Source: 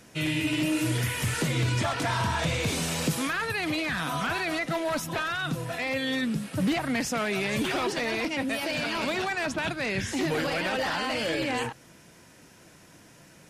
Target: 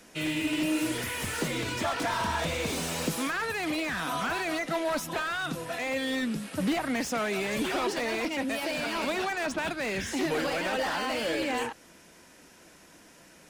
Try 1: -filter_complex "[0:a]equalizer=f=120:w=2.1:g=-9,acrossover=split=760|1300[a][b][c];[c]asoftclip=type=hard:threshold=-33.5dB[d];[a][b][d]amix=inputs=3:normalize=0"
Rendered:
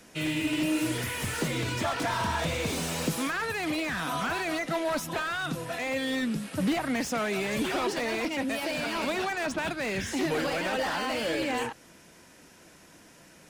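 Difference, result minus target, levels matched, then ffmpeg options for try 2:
125 Hz band +3.0 dB
-filter_complex "[0:a]equalizer=f=120:w=2.1:g=-15.5,acrossover=split=760|1300[a][b][c];[c]asoftclip=type=hard:threshold=-33.5dB[d];[a][b][d]amix=inputs=3:normalize=0"

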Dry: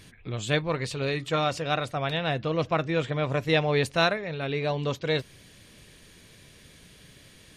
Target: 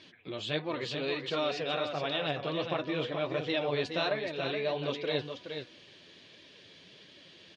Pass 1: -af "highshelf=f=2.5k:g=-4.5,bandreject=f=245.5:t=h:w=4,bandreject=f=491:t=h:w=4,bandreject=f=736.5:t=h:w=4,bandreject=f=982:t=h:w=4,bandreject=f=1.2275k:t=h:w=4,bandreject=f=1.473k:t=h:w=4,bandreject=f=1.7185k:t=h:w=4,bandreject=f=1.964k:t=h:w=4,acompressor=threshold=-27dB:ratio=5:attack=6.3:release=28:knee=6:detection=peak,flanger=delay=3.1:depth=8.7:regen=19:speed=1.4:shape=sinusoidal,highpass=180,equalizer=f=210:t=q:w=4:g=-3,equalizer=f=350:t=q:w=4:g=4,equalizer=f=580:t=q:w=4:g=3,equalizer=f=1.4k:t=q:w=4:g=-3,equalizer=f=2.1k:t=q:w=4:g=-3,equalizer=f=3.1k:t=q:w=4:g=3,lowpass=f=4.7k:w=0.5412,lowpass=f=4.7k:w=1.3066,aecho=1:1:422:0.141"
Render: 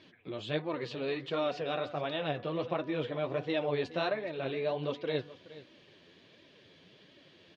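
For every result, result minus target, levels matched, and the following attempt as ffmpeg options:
echo-to-direct -10 dB; 4000 Hz band -5.0 dB
-af "highshelf=f=2.5k:g=-4.5,bandreject=f=245.5:t=h:w=4,bandreject=f=491:t=h:w=4,bandreject=f=736.5:t=h:w=4,bandreject=f=982:t=h:w=4,bandreject=f=1.2275k:t=h:w=4,bandreject=f=1.473k:t=h:w=4,bandreject=f=1.7185k:t=h:w=4,bandreject=f=1.964k:t=h:w=4,acompressor=threshold=-27dB:ratio=5:attack=6.3:release=28:knee=6:detection=peak,flanger=delay=3.1:depth=8.7:regen=19:speed=1.4:shape=sinusoidal,highpass=180,equalizer=f=210:t=q:w=4:g=-3,equalizer=f=350:t=q:w=4:g=4,equalizer=f=580:t=q:w=4:g=3,equalizer=f=1.4k:t=q:w=4:g=-3,equalizer=f=2.1k:t=q:w=4:g=-3,equalizer=f=3.1k:t=q:w=4:g=3,lowpass=f=4.7k:w=0.5412,lowpass=f=4.7k:w=1.3066,aecho=1:1:422:0.447"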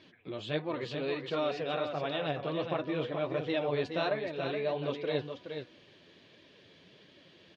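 4000 Hz band -5.0 dB
-af "highshelf=f=2.5k:g=5.5,bandreject=f=245.5:t=h:w=4,bandreject=f=491:t=h:w=4,bandreject=f=736.5:t=h:w=4,bandreject=f=982:t=h:w=4,bandreject=f=1.2275k:t=h:w=4,bandreject=f=1.473k:t=h:w=4,bandreject=f=1.7185k:t=h:w=4,bandreject=f=1.964k:t=h:w=4,acompressor=threshold=-27dB:ratio=5:attack=6.3:release=28:knee=6:detection=peak,flanger=delay=3.1:depth=8.7:regen=19:speed=1.4:shape=sinusoidal,highpass=180,equalizer=f=210:t=q:w=4:g=-3,equalizer=f=350:t=q:w=4:g=4,equalizer=f=580:t=q:w=4:g=3,equalizer=f=1.4k:t=q:w=4:g=-3,equalizer=f=2.1k:t=q:w=4:g=-3,equalizer=f=3.1k:t=q:w=4:g=3,lowpass=f=4.7k:w=0.5412,lowpass=f=4.7k:w=1.3066,aecho=1:1:422:0.447"

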